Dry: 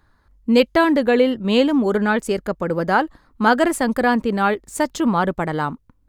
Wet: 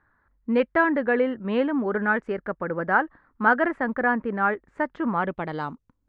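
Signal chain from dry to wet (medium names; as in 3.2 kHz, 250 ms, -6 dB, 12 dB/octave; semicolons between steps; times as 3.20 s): bass shelf 84 Hz -8 dB; low-pass sweep 1.7 kHz -> 7 kHz, 5.11–5.72 s; treble shelf 4 kHz -5 dB, from 3.72 s -11.5 dB; trim -7 dB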